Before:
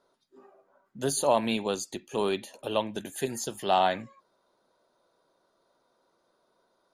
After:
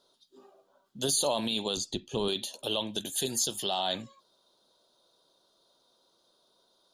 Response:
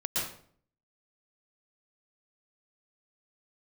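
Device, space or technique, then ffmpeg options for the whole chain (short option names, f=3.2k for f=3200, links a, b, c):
over-bright horn tweeter: -filter_complex "[0:a]asettb=1/sr,asplit=3[a][b][c];[a]atrim=end=1.774[d];[b]atrim=start=1.77:end=2.28,asetpts=PTS-STARTPTS,afade=t=in:d=0.004:c=qsin,afade=t=out:st=0.506:d=0.004:c=qsin,aemphasis=mode=reproduction:type=bsi[e];[c]atrim=start=2.276[f];[d][e]acrossfade=d=0.004:c1=hsin:c2=qsin[g];[g][f]acrossfade=d=0.004:c1=qsin:c2=hsin,highshelf=f=2.7k:t=q:w=3:g=8,alimiter=limit=-17dB:level=0:latency=1:release=18,volume=-1dB"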